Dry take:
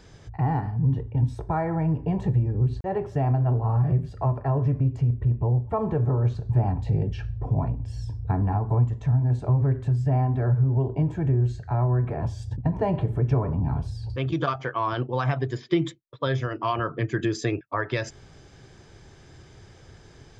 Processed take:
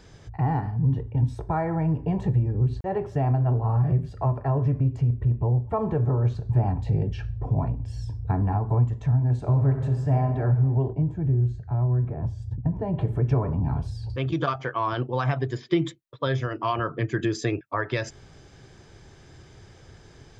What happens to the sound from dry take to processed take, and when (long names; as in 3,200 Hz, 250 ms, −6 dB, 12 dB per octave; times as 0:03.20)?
0:09.38–0:10.34: thrown reverb, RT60 1.6 s, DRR 5 dB
0:10.93–0:12.99: drawn EQ curve 140 Hz 0 dB, 810 Hz −8 dB, 2,800 Hz −13 dB